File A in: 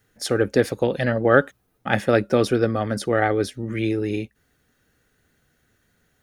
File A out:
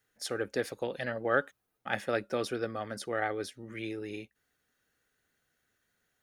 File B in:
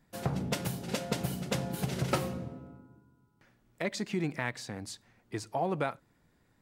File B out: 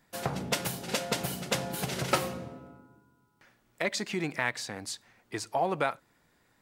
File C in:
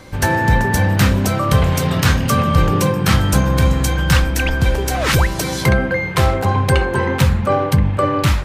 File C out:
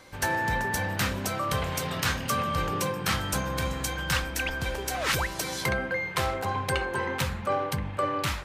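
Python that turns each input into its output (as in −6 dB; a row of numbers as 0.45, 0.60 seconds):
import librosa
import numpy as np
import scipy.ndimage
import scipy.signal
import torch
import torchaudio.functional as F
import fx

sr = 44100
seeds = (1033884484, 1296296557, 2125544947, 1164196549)

y = fx.low_shelf(x, sr, hz=360.0, db=-11.0)
y = y * 10.0 ** (-12 / 20.0) / np.max(np.abs(y))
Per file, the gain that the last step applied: −9.0, +6.0, −8.0 decibels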